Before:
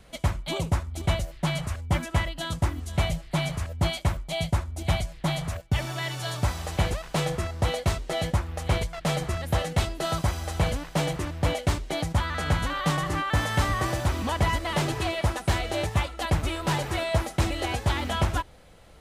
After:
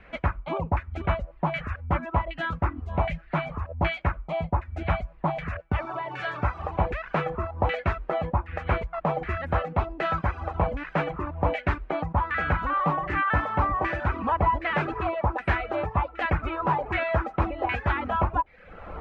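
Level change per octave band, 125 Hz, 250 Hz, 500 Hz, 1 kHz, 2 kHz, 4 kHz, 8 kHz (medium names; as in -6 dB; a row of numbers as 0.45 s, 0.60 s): -3.0 dB, -1.5 dB, +1.5 dB, +4.5 dB, +2.0 dB, -11.5 dB, under -25 dB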